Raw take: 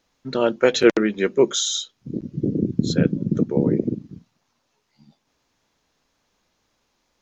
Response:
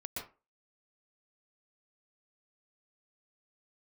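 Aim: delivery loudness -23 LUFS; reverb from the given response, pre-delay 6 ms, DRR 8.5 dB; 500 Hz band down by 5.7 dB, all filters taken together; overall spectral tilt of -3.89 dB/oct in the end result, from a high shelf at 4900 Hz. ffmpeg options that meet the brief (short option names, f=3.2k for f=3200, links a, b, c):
-filter_complex "[0:a]equalizer=f=500:t=o:g=-7.5,highshelf=f=4.9k:g=8.5,asplit=2[a][b];[1:a]atrim=start_sample=2205,adelay=6[c];[b][c]afir=irnorm=-1:irlink=0,volume=-8.5dB[d];[a][d]amix=inputs=2:normalize=0,volume=-1dB"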